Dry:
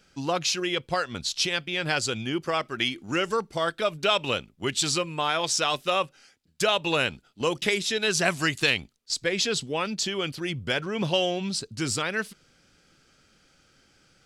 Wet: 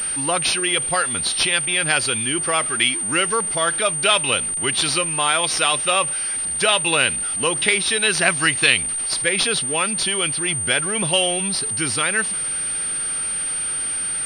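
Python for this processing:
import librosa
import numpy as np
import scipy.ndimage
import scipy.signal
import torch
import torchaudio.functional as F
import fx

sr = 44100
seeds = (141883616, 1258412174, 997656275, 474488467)

y = x + 0.5 * 10.0 ** (-36.0 / 20.0) * np.sign(x)
y = fx.tilt_shelf(y, sr, db=-5.0, hz=1100.0)
y = fx.pwm(y, sr, carrier_hz=8800.0)
y = F.gain(torch.from_numpy(y), 5.0).numpy()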